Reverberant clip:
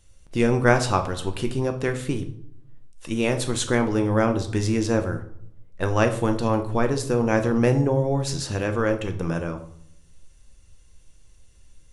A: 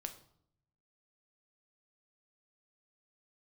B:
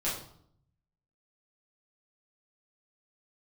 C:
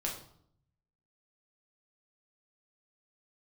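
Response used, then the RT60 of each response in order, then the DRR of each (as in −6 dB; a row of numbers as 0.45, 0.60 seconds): A; 0.65, 0.65, 0.65 seconds; 6.0, −8.5, −2.0 decibels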